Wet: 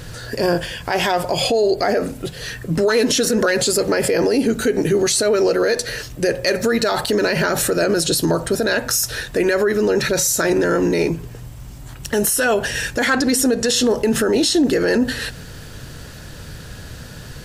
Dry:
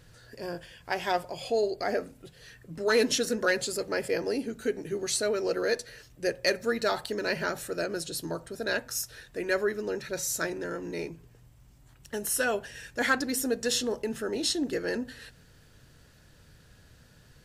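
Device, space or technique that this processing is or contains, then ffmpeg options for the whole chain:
mastering chain: -filter_complex "[0:a]asettb=1/sr,asplit=3[s0][s1][s2];[s0]atrim=end=13.074[s3];[s1]atrim=start=13.07:end=13.76,asetpts=PTS-STARTPTS,afade=t=in:d=0.004:c=qsin,afade=t=out:st=0.686:d=0.004:c=qsin,lowpass=11000[s4];[s2]atrim=start=13.756[s5];[s3][s4]acrossfade=d=0.004:c1=hsin:c2=qsin[s6];[s6][s5]acrossfade=d=0.004:c1=qsin:c2=hsin,equalizer=f=2100:t=o:w=0.77:g=-1.5,acompressor=threshold=0.0355:ratio=2,alimiter=level_in=29.9:limit=0.891:release=50:level=0:latency=1,volume=0.398"

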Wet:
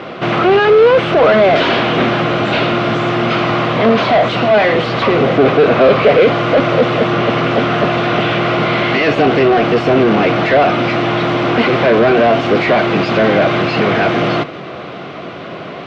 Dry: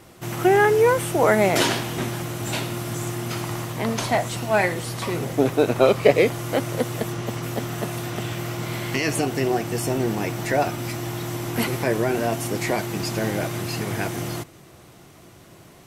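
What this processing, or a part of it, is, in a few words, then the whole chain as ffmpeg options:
overdrive pedal into a guitar cabinet: -filter_complex "[0:a]asplit=2[s0][s1];[s1]highpass=f=720:p=1,volume=50.1,asoftclip=type=tanh:threshold=0.794[s2];[s0][s2]amix=inputs=2:normalize=0,lowpass=f=1100:p=1,volume=0.501,highpass=90,equalizer=f=110:t=q:w=4:g=-5,equalizer=f=340:t=q:w=4:g=-5,equalizer=f=890:t=q:w=4:g=-9,equalizer=f=1800:t=q:w=4:g=-5,lowpass=f=3900:w=0.5412,lowpass=f=3900:w=1.3066,volume=1.5"

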